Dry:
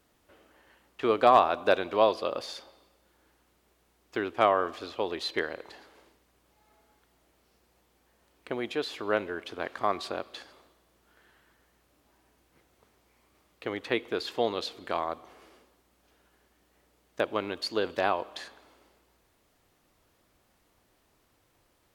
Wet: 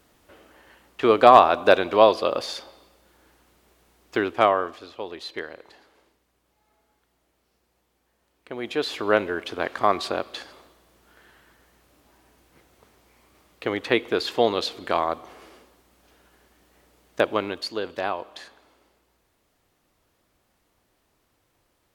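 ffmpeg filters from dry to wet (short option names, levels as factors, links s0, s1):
-af "volume=7.94,afade=t=out:st=4.19:d=0.62:silence=0.298538,afade=t=in:st=8.5:d=0.4:silence=0.298538,afade=t=out:st=17.21:d=0.57:silence=0.398107"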